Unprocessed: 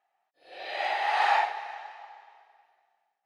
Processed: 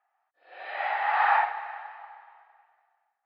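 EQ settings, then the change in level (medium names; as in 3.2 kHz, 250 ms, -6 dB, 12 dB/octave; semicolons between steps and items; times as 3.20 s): band-pass filter 1.3 kHz, Q 1.7; distance through air 160 m; +7.0 dB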